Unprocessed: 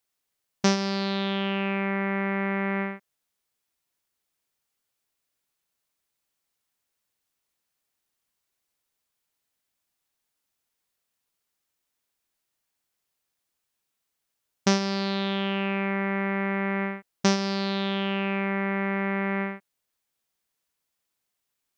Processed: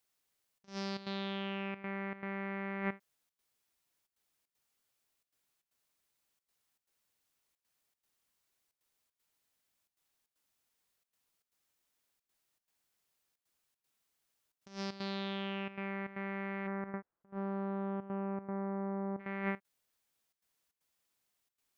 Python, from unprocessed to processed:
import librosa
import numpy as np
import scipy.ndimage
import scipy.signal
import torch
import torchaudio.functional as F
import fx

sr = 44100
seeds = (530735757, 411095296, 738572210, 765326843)

y = fx.lowpass(x, sr, hz=fx.line((16.66, 1700.0), (19.19, 1000.0)), slope=24, at=(16.66, 19.19), fade=0.02)
y = fx.over_compress(y, sr, threshold_db=-31.0, ratio=-0.5)
y = fx.step_gate(y, sr, bpm=155, pattern='xxxxxx.xxx.x', floor_db=-12.0, edge_ms=4.5)
y = y * 10.0 ** (-6.0 / 20.0)